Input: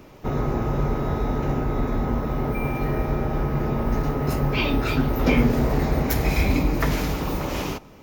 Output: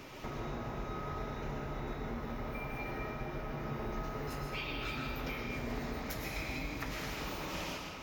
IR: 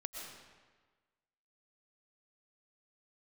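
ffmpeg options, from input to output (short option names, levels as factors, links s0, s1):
-filter_complex "[0:a]lowpass=f=4000:p=1,tiltshelf=f=1300:g=-7,acompressor=threshold=0.00794:ratio=5,flanger=delay=7.2:depth=7.9:regen=74:speed=0.3:shape=triangular[s0];[1:a]atrim=start_sample=2205[s1];[s0][s1]afir=irnorm=-1:irlink=0,volume=2.99"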